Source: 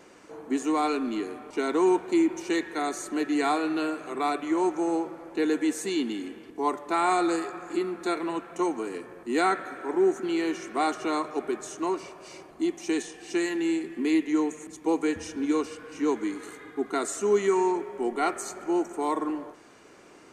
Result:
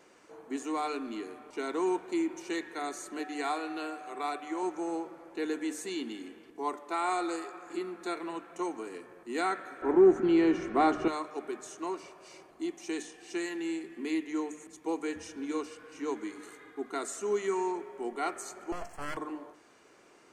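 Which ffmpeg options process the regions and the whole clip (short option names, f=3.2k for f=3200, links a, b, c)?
-filter_complex "[0:a]asettb=1/sr,asplit=3[a][b][c];[a]atrim=end=3.194[d];[b]atrim=start=3.19:end=4.63,asetpts=PTS-STARTPTS,afade=t=in:d=0.004:c=qsin,afade=t=out:st=1.436:d=0.004:c=qsin,highpass=f=290:p=1,aeval=exprs='val(0)+0.0126*sin(2*PI*750*n/s)':c=same[e];[c]atrim=start=4.626[f];[d][e]acrossfade=d=0.004:c1=hsin:c2=qsin[g];[g][f]acrossfade=d=0.004:c1=qsin:c2=hsin,asettb=1/sr,asplit=3[h][i][j];[h]atrim=end=6.744[k];[i]atrim=start=6.74:end=7.67,asetpts=PTS-STARTPTS,afade=t=in:d=0.004:c=qsin,afade=t=out:st=0.926:d=0.004:c=qsin,highpass=240,bandreject=f=1.7k:w=24[l];[j]atrim=start=7.666[m];[k][l]acrossfade=d=0.004:c1=hsin:c2=qsin[n];[n][m]acrossfade=d=0.004:c1=qsin:c2=hsin,asettb=1/sr,asplit=3[o][p][q];[o]atrim=end=9.824[r];[p]atrim=start=9.82:end=11.08,asetpts=PTS-STARTPTS,afade=t=in:d=0.004:c=qsin,afade=t=out:st=1.256:d=0.004:c=qsin,aemphasis=mode=reproduction:type=riaa,acontrast=78,aeval=exprs='val(0)+0.00355*(sin(2*PI*60*n/s)+sin(2*PI*2*60*n/s)/2+sin(2*PI*3*60*n/s)/3+sin(2*PI*4*60*n/s)/4+sin(2*PI*5*60*n/s)/5)':c=same[s];[q]atrim=start=11.076[t];[r][s]acrossfade=d=0.004:c1=hsin:c2=qsin[u];[u][t]acrossfade=d=0.004:c1=qsin:c2=hsin,asettb=1/sr,asplit=3[v][w][x];[v]atrim=end=18.724[y];[w]atrim=start=18.72:end=19.17,asetpts=PTS-STARTPTS,afade=t=in:d=0.004:c=qsin,afade=t=out:st=0.446:d=0.004:c=qsin,bandreject=f=50:t=h:w=6,bandreject=f=100:t=h:w=6,bandreject=f=150:t=h:w=6,bandreject=f=200:t=h:w=6,bandreject=f=250:t=h:w=6,bandreject=f=300:t=h:w=6,bandreject=f=350:t=h:w=6,bandreject=f=400:t=h:w=6,aeval=exprs='abs(val(0))':c=same,asuperstop=centerf=3700:order=20:qfactor=6.2[z];[x]atrim=start=19.166[aa];[y][z]acrossfade=d=0.004:c1=hsin:c2=qsin[ab];[ab][aa]acrossfade=d=0.004:c1=qsin:c2=hsin,lowshelf=f=290:g=-4.5,bandreject=f=50:t=h:w=6,bandreject=f=100:t=h:w=6,bandreject=f=150:t=h:w=6,bandreject=f=200:t=h:w=6,bandreject=f=250:t=h:w=6,bandreject=f=300:t=h:w=6,volume=-6dB"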